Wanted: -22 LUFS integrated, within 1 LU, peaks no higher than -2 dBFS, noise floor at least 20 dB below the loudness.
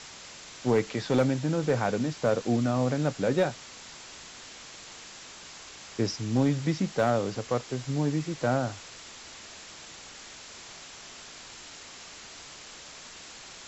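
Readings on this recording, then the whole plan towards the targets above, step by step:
clipped 0.3%; flat tops at -16.5 dBFS; noise floor -47 dBFS; noise floor target -48 dBFS; loudness -28.0 LUFS; peak -16.5 dBFS; loudness target -22.0 LUFS
-> clip repair -16.5 dBFS; noise print and reduce 6 dB; gain +6 dB

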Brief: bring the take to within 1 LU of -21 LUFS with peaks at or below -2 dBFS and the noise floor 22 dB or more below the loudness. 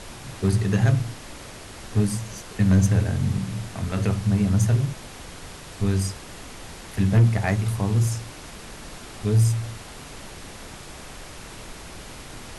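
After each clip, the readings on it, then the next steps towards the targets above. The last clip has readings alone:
clipped 0.4%; flat tops at -11.5 dBFS; noise floor -41 dBFS; noise floor target -45 dBFS; loudness -23.0 LUFS; peak -11.5 dBFS; loudness target -21.0 LUFS
-> clip repair -11.5 dBFS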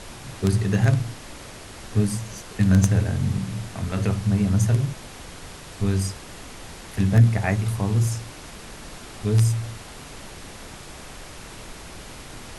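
clipped 0.0%; noise floor -41 dBFS; noise floor target -45 dBFS
-> noise print and reduce 6 dB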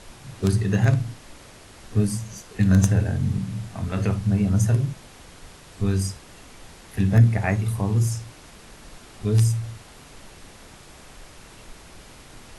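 noise floor -47 dBFS; loudness -23.0 LUFS; peak -2.5 dBFS; loudness target -21.0 LUFS
-> gain +2 dB; limiter -2 dBFS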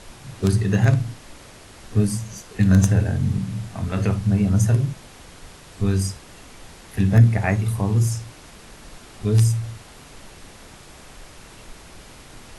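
loudness -21.0 LUFS; peak -2.0 dBFS; noise floor -45 dBFS

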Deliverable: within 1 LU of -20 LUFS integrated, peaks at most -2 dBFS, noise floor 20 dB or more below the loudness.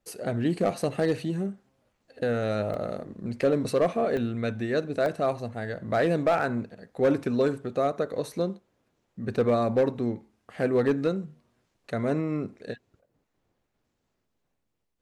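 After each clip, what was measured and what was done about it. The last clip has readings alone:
clipped 0.4%; flat tops at -16.0 dBFS; dropouts 3; longest dropout 1.2 ms; loudness -27.5 LUFS; peak -16.0 dBFS; loudness target -20.0 LUFS
-> clip repair -16 dBFS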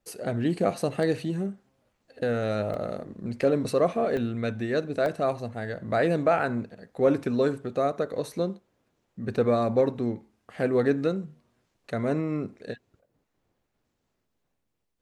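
clipped 0.0%; dropouts 3; longest dropout 1.2 ms
-> interpolate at 2.74/4.17/5.06, 1.2 ms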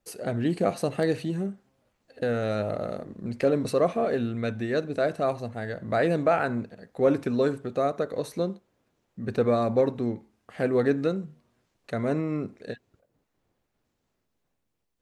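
dropouts 0; loudness -27.5 LUFS; peak -10.5 dBFS; loudness target -20.0 LUFS
-> gain +7.5 dB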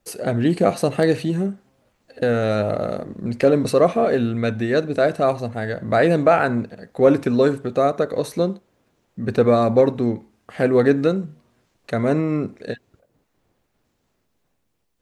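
loudness -20.0 LUFS; peak -3.0 dBFS; noise floor -70 dBFS

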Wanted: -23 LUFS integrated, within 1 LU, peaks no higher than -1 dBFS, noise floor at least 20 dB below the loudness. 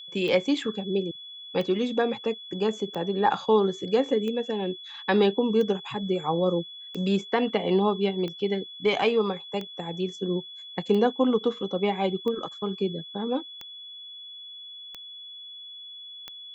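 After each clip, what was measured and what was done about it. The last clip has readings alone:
clicks 13; steady tone 3400 Hz; tone level -40 dBFS; loudness -26.5 LUFS; peak -9.5 dBFS; loudness target -23.0 LUFS
-> de-click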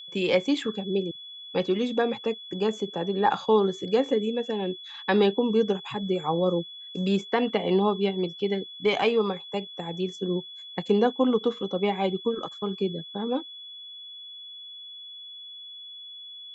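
clicks 0; steady tone 3400 Hz; tone level -40 dBFS
-> notch 3400 Hz, Q 30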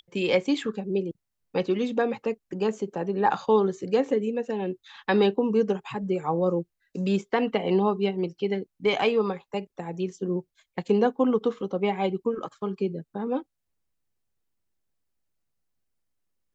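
steady tone none; loudness -27.0 LUFS; peak -9.5 dBFS; loudness target -23.0 LUFS
-> gain +4 dB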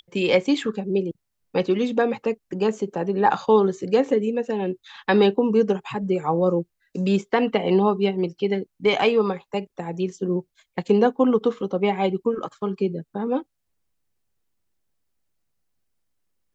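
loudness -23.0 LUFS; peak -5.5 dBFS; noise floor -76 dBFS

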